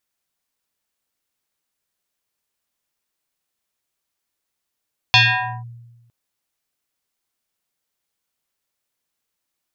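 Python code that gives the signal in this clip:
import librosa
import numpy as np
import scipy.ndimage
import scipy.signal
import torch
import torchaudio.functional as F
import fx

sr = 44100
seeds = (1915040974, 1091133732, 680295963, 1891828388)

y = fx.fm2(sr, length_s=0.96, level_db=-7.0, carrier_hz=118.0, ratio=7.34, index=4.8, index_s=0.5, decay_s=1.23, shape='linear')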